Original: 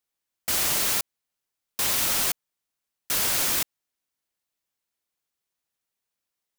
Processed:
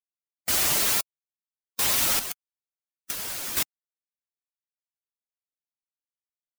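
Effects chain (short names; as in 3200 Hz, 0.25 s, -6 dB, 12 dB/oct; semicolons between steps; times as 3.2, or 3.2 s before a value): per-bin expansion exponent 1.5; 2.19–3.57 negative-ratio compressor -33 dBFS, ratio -0.5; gain +3.5 dB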